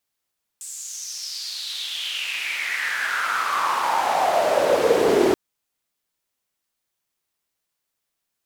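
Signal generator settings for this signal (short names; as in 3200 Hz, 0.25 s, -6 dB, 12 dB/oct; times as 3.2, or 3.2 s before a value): swept filtered noise white, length 4.73 s bandpass, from 8000 Hz, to 360 Hz, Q 5.7, exponential, gain ramp +31.5 dB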